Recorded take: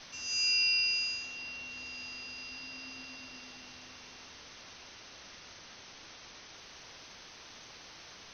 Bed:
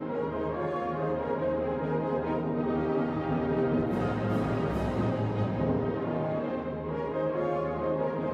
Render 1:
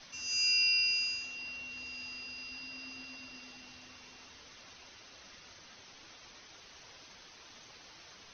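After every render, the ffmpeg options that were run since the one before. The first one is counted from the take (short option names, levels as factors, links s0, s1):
-af "afftdn=nr=6:nf=-52"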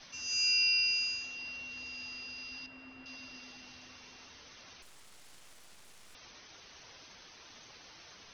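-filter_complex "[0:a]asettb=1/sr,asplit=3[s0][s1][s2];[s0]atrim=end=2.664[s3];[s1]atrim=start=2.66:end=3.06,asetpts=PTS-STARTPTS,afade=t=in:d=0.004:c=qsin,afade=t=out:st=0.396:d=0.004:c=qsin,lowpass=2000[s4];[s2]atrim=start=3.056[s5];[s3][s4]acrossfade=d=0.004:c1=hsin:c2=qsin[s6];[s6][s5]acrossfade=d=0.004:c1=qsin:c2=hsin,asettb=1/sr,asplit=3[s7][s8][s9];[s7]atrim=end=4.824[s10];[s8]atrim=start=4.82:end=6.15,asetpts=PTS-STARTPTS,afade=t=in:d=0.004:c=qsin,afade=t=out:st=1.326:d=0.004:c=qsin,aeval=exprs='abs(val(0))':c=same[s11];[s9]atrim=start=6.146[s12];[s10][s11]acrossfade=d=0.004:c1=hsin:c2=qsin[s13];[s13][s12]acrossfade=d=0.004:c1=qsin:c2=hsin"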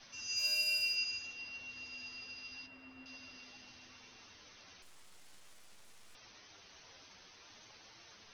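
-af "asoftclip=type=hard:threshold=0.0501,flanger=delay=8.6:depth=2.7:regen=49:speed=0.5:shape=triangular"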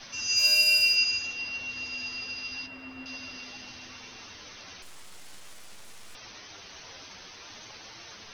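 -af "volume=3.98"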